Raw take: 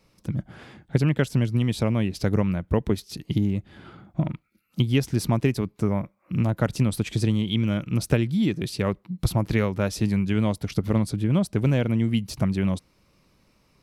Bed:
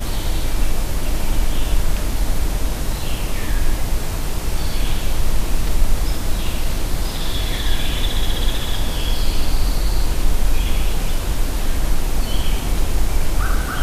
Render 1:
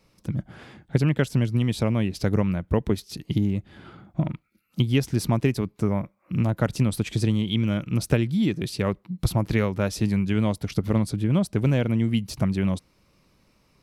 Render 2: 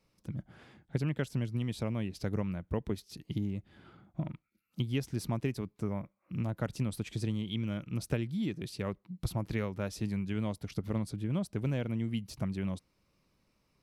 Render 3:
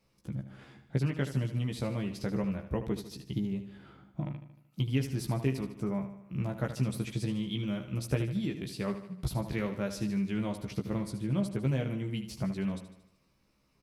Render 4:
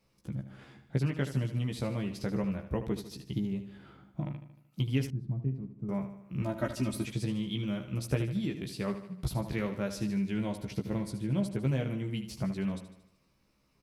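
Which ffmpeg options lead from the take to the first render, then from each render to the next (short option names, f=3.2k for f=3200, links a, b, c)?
-af anull
-af "volume=-11dB"
-filter_complex "[0:a]asplit=2[a][b];[b]adelay=15,volume=-4dB[c];[a][c]amix=inputs=2:normalize=0,aecho=1:1:76|152|228|304|380|456:0.282|0.149|0.0792|0.042|0.0222|0.0118"
-filter_complex "[0:a]asettb=1/sr,asplit=3[a][b][c];[a]atrim=end=5.104[d];[b]atrim=start=5.1:end=5.89,asetpts=PTS-STARTPTS,afade=t=in:d=0.004:c=qsin,afade=t=out:st=0.786:d=0.004:c=qsin,bandpass=f=140:t=q:w=1.5[e];[c]atrim=start=5.886[f];[d][e]acrossfade=d=0.004:c1=hsin:c2=qsin[g];[g][f]acrossfade=d=0.004:c1=qsin:c2=hsin,asettb=1/sr,asplit=3[h][i][j];[h]atrim=end=6.424[k];[i]atrim=start=6.42:end=7.07,asetpts=PTS-STARTPTS,afade=t=in:d=0.004:c=qsin,afade=t=out:st=0.646:d=0.004:c=qsin,aecho=1:1:3.2:0.89,atrim=end_sample=28665[l];[j]atrim=start=7.066[m];[k][l]acrossfade=d=0.004:c1=hsin:c2=qsin[n];[n][m]acrossfade=d=0.004:c1=qsin:c2=hsin,asettb=1/sr,asplit=3[o][p][q];[o]atrim=end=10.134[r];[p]atrim=start=10.13:end=11.61,asetpts=PTS-STARTPTS,afade=t=in:d=0.004:c=qsin,afade=t=out:st=1.476:d=0.004:c=qsin,bandreject=f=1.2k:w=7.5[s];[q]atrim=start=11.606[t];[r][s]acrossfade=d=0.004:c1=hsin:c2=qsin[u];[u][t]acrossfade=d=0.004:c1=qsin:c2=hsin"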